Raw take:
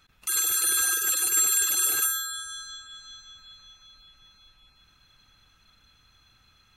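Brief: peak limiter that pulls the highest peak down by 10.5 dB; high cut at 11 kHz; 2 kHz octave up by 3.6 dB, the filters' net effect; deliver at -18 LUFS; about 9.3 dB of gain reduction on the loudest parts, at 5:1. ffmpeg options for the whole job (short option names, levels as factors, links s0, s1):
-af "lowpass=11000,equalizer=f=2000:t=o:g=5,acompressor=threshold=0.0282:ratio=5,volume=8.41,alimiter=limit=0.299:level=0:latency=1"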